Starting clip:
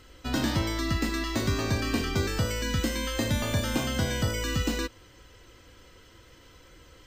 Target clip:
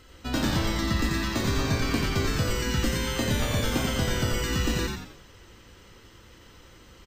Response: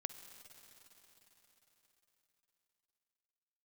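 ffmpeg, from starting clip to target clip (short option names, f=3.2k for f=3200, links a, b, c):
-filter_complex "[0:a]asplit=6[a][b][c][d][e][f];[b]adelay=88,afreqshift=-120,volume=-3dB[g];[c]adelay=176,afreqshift=-240,volume=-10.5dB[h];[d]adelay=264,afreqshift=-360,volume=-18.1dB[i];[e]adelay=352,afreqshift=-480,volume=-25.6dB[j];[f]adelay=440,afreqshift=-600,volume=-33.1dB[k];[a][g][h][i][j][k]amix=inputs=6:normalize=0"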